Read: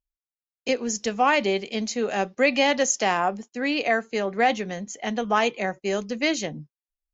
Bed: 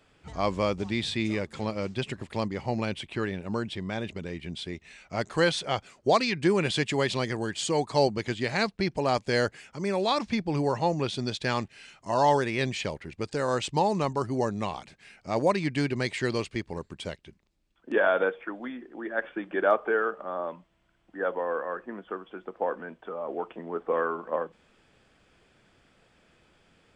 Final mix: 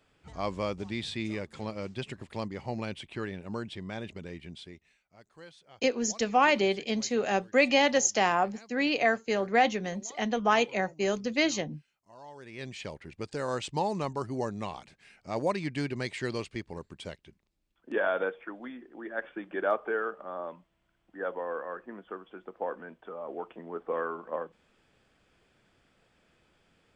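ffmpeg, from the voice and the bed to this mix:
ffmpeg -i stem1.wav -i stem2.wav -filter_complex "[0:a]adelay=5150,volume=-2.5dB[link_01];[1:a]volume=16dB,afade=type=out:start_time=4.34:duration=0.69:silence=0.0891251,afade=type=in:start_time=12.35:duration=0.73:silence=0.0841395[link_02];[link_01][link_02]amix=inputs=2:normalize=0" out.wav

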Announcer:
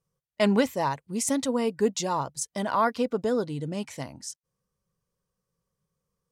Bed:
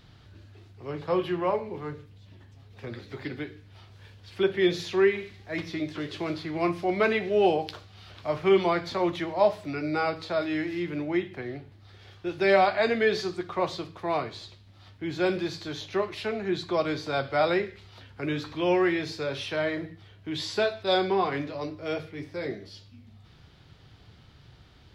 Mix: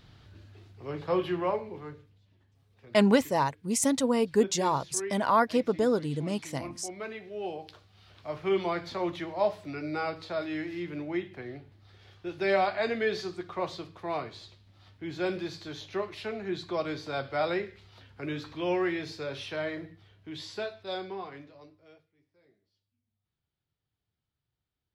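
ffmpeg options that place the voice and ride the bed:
ffmpeg -i stem1.wav -i stem2.wav -filter_complex "[0:a]adelay=2550,volume=0.5dB[link_01];[1:a]volume=8.5dB,afade=type=out:start_time=1.35:duration=0.94:silence=0.211349,afade=type=in:start_time=7.37:duration=1.48:silence=0.316228,afade=type=out:start_time=19.54:duration=2.52:silence=0.0375837[link_02];[link_01][link_02]amix=inputs=2:normalize=0" out.wav

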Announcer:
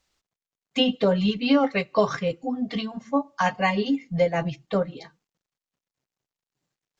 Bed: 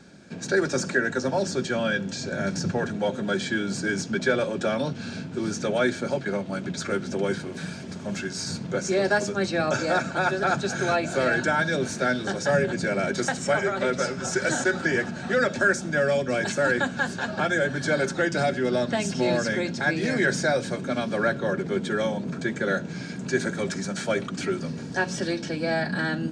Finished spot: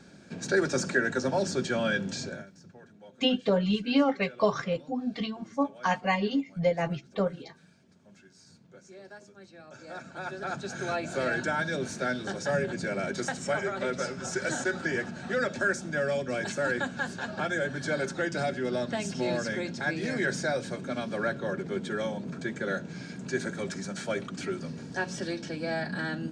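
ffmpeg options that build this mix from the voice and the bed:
ffmpeg -i stem1.wav -i stem2.wav -filter_complex "[0:a]adelay=2450,volume=-4dB[link_01];[1:a]volume=17dB,afade=type=out:start_time=2.19:duration=0.27:silence=0.0707946,afade=type=in:start_time=9.71:duration=1.5:silence=0.105925[link_02];[link_01][link_02]amix=inputs=2:normalize=0" out.wav

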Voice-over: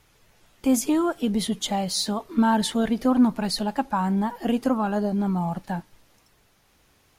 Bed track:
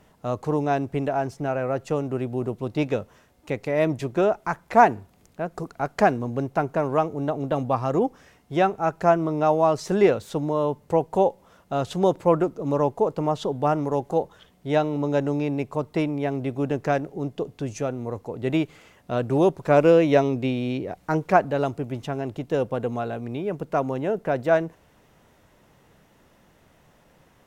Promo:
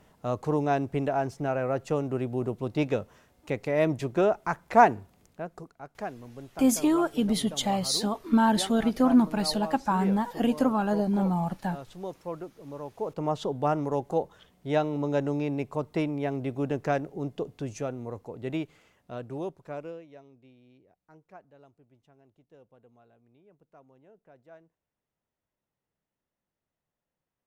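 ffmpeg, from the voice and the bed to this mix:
ffmpeg -i stem1.wav -i stem2.wav -filter_complex "[0:a]adelay=5950,volume=-1.5dB[link_01];[1:a]volume=10.5dB,afade=type=out:start_time=5.07:duration=0.69:silence=0.188365,afade=type=in:start_time=12.9:duration=0.42:silence=0.223872,afade=type=out:start_time=17.43:duration=2.63:silence=0.0398107[link_02];[link_01][link_02]amix=inputs=2:normalize=0" out.wav

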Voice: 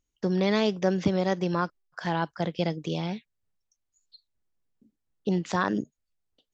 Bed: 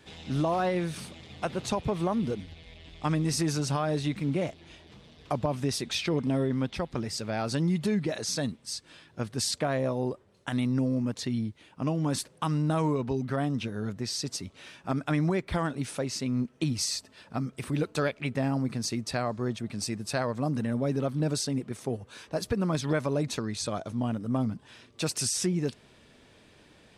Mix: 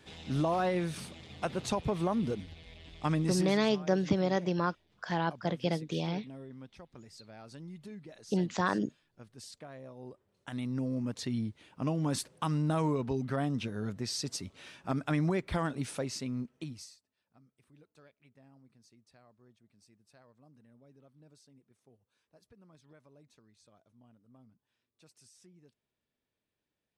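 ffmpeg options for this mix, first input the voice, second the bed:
ffmpeg -i stem1.wav -i stem2.wav -filter_complex "[0:a]adelay=3050,volume=-3.5dB[link_01];[1:a]volume=14dB,afade=type=out:start_time=3.2:duration=0.4:silence=0.141254,afade=type=in:start_time=9.95:duration=1.48:silence=0.149624,afade=type=out:start_time=15.92:duration=1.05:silence=0.0354813[link_02];[link_01][link_02]amix=inputs=2:normalize=0" out.wav

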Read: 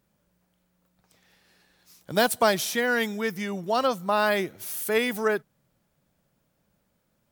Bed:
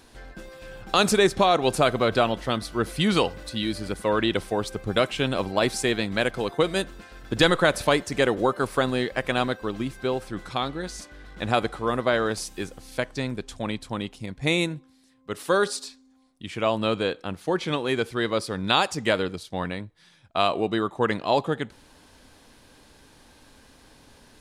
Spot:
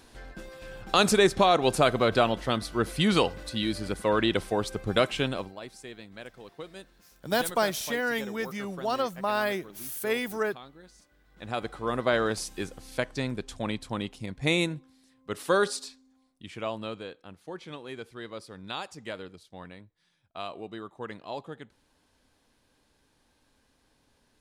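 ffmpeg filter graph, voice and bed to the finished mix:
ffmpeg -i stem1.wav -i stem2.wav -filter_complex "[0:a]adelay=5150,volume=-4.5dB[link_01];[1:a]volume=16dB,afade=type=out:start_time=5.16:duration=0.4:silence=0.125893,afade=type=in:start_time=11.27:duration=0.87:silence=0.133352,afade=type=out:start_time=15.6:duration=1.47:silence=0.223872[link_02];[link_01][link_02]amix=inputs=2:normalize=0" out.wav

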